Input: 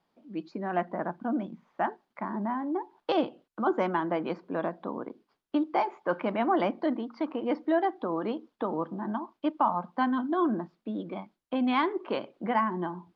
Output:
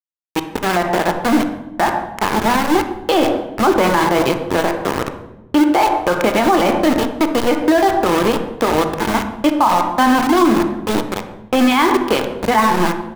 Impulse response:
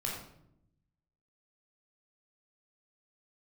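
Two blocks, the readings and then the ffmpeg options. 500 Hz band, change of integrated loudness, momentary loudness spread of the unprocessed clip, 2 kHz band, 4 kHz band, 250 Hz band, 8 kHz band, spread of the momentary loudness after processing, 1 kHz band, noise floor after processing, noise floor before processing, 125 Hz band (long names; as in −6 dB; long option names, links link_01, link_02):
+14.0 dB, +14.5 dB, 10 LU, +17.5 dB, +20.5 dB, +14.0 dB, can't be measured, 7 LU, +14.5 dB, −39 dBFS, −80 dBFS, +15.0 dB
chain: -filter_complex "[0:a]highshelf=frequency=2700:gain=9,asplit=2[link_01][link_02];[link_02]adelay=23,volume=-11.5dB[link_03];[link_01][link_03]amix=inputs=2:normalize=0,aeval=exprs='val(0)*gte(abs(val(0)),0.0335)':channel_layout=same,asplit=2[link_04][link_05];[1:a]atrim=start_sample=2205,asetrate=31311,aresample=44100,highshelf=frequency=4000:gain=-9.5[link_06];[link_05][link_06]afir=irnorm=-1:irlink=0,volume=-8.5dB[link_07];[link_04][link_07]amix=inputs=2:normalize=0,alimiter=level_in=17.5dB:limit=-1dB:release=50:level=0:latency=1,volume=-3.5dB"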